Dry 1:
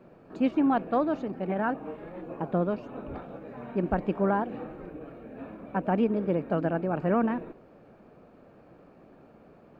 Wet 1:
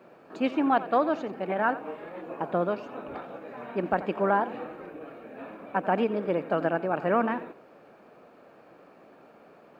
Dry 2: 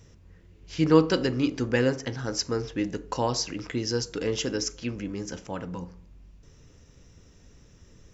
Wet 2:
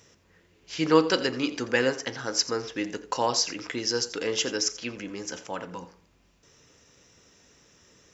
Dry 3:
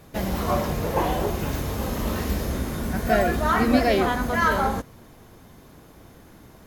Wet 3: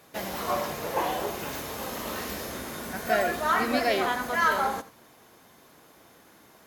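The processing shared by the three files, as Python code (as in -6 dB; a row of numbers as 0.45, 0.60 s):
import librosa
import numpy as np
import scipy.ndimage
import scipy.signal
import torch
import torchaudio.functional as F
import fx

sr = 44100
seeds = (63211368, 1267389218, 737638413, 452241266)

y = fx.highpass(x, sr, hz=670.0, slope=6)
y = y + 10.0 ** (-16.0 / 20.0) * np.pad(y, (int(86 * sr / 1000.0), 0))[:len(y)]
y = y * 10.0 ** (-30 / 20.0) / np.sqrt(np.mean(np.square(y)))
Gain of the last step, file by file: +6.0, +4.5, -1.0 dB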